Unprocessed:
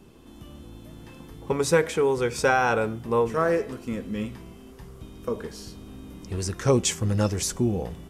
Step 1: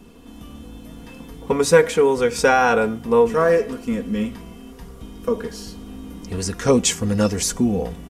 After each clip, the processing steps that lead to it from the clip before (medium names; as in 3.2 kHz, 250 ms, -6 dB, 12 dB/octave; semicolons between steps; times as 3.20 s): comb 4.2 ms, depth 55%; trim +4.5 dB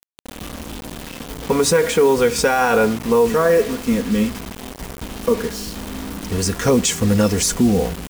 peak limiter -12 dBFS, peak gain reduction 10.5 dB; bit crusher 6-bit; trim +5 dB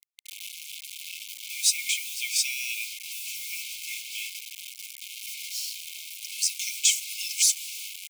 brick-wall FIR high-pass 2.1 kHz; trim -1 dB